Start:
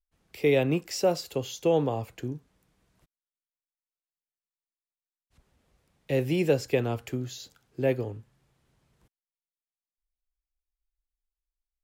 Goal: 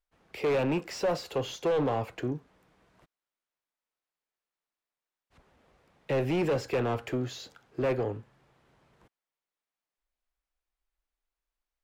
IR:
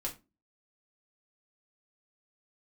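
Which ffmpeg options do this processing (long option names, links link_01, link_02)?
-filter_complex "[0:a]volume=25dB,asoftclip=hard,volume=-25dB,asplit=2[link_01][link_02];[link_02]highpass=frequency=720:poles=1,volume=15dB,asoftclip=type=tanh:threshold=-25dB[link_03];[link_01][link_03]amix=inputs=2:normalize=0,lowpass=frequency=1100:poles=1,volume=-6dB,volume=3.5dB"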